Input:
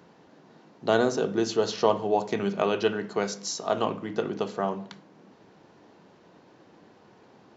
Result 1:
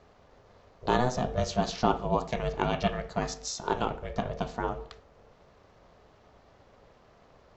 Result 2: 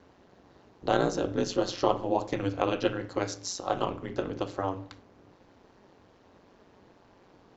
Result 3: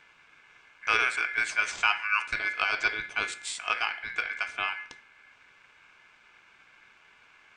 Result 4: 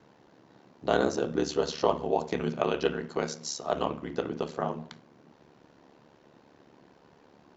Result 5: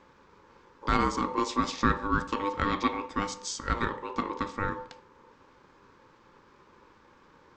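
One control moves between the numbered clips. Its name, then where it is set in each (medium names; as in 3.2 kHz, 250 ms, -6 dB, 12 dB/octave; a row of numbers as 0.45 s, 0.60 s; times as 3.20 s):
ring modulator, frequency: 250 Hz, 92 Hz, 1.9 kHz, 36 Hz, 700 Hz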